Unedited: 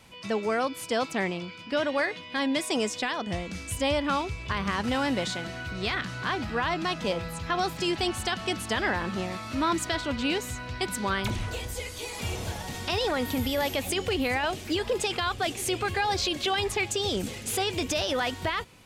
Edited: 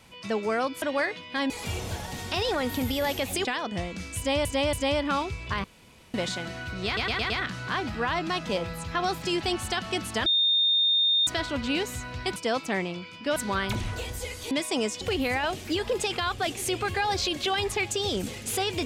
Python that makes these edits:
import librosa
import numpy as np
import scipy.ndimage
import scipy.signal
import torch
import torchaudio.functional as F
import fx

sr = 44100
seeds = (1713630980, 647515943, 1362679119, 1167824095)

y = fx.edit(x, sr, fx.move(start_s=0.82, length_s=1.0, to_s=10.91),
    fx.swap(start_s=2.5, length_s=0.5, other_s=12.06, other_length_s=1.95),
    fx.repeat(start_s=3.72, length_s=0.28, count=3),
    fx.room_tone_fill(start_s=4.63, length_s=0.5),
    fx.stutter(start_s=5.85, slice_s=0.11, count=5),
    fx.bleep(start_s=8.81, length_s=1.01, hz=3650.0, db=-19.5), tone=tone)